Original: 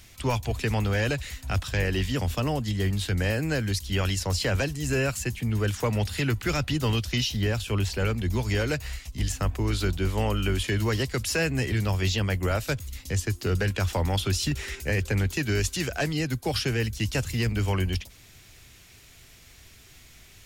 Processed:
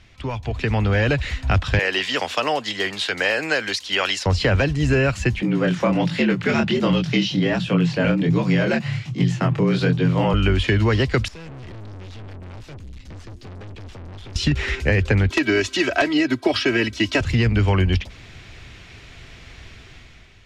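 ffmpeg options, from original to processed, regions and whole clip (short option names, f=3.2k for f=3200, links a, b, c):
-filter_complex "[0:a]asettb=1/sr,asplit=3[a][b][c];[a]atrim=end=1.794[d];[b]atrim=start=1.79:end=4.26,asetpts=PTS-STARTPTS,afade=t=in:d=0.004:c=qsin,afade=t=out:st=2.466:d=0.004:c=qsin,highpass=550,highshelf=f=3.8k:g=8[e];[c]atrim=start=4.256[f];[d][e]acrossfade=d=0.004:c1=hsin:c2=qsin[g];[g][f]acrossfade=d=0.004:c1=qsin:c2=hsin,asettb=1/sr,asplit=3[h][i][j];[h]atrim=end=5.424[k];[i]atrim=start=5.42:end=10.34,asetpts=PTS-STARTPTS,afade=t=in:d=0.004:c=qsin,afade=t=out:st=4.916:d=0.004:c=qsin,flanger=delay=20:depth=7.5:speed=1.3,afreqshift=76[l];[j]atrim=start=10.336[m];[k][l]acrossfade=d=0.004:c1=hsin:c2=qsin[n];[n][m]acrossfade=d=0.004:c1=qsin:c2=hsin,asettb=1/sr,asplit=3[o][p][q];[o]atrim=end=11.284[r];[p]atrim=start=11.28:end=14.36,asetpts=PTS-STARTPTS,afade=t=in:d=0.004:c=qsin,afade=t=out:st=3.076:d=0.004:c=qsin,equalizer=f=1.1k:t=o:w=2.8:g=-14,aeval=exprs='(tanh(251*val(0)+0.45)-tanh(0.45))/251':c=same[s];[q]atrim=start=14.356[t];[r][s]acrossfade=d=0.004:c1=hsin:c2=qsin[u];[u][t]acrossfade=d=0.004:c1=qsin:c2=hsin,asettb=1/sr,asplit=3[v][w][x];[v]atrim=end=15.304[y];[w]atrim=start=15.3:end=17.21,asetpts=PTS-STARTPTS,afade=t=in:d=0.004:c=qsin,afade=t=out:st=1.906:d=0.004:c=qsin,highpass=220,aecho=1:1:3.1:0.85,atrim=end_sample=84231,aeval=exprs='(mod(4.73*val(0)+1,2)-1)/4.73':c=same[z];[x]atrim=start=17.206[aa];[y][z]acrossfade=d=0.004:c1=hsin:c2=qsin[ab];[ab][aa]acrossfade=d=0.004:c1=qsin:c2=hsin,acompressor=threshold=-26dB:ratio=6,lowpass=3.3k,dynaudnorm=f=190:g=7:m=10dB,volume=2dB"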